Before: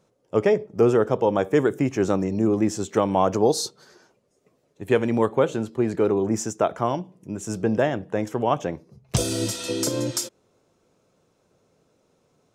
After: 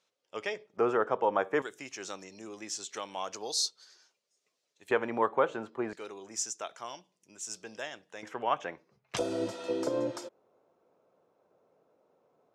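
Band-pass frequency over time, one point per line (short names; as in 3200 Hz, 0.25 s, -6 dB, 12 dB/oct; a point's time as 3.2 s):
band-pass, Q 1.1
3500 Hz
from 0.77 s 1300 Hz
from 1.62 s 4700 Hz
from 4.91 s 1200 Hz
from 5.93 s 5300 Hz
from 8.23 s 1800 Hz
from 9.19 s 710 Hz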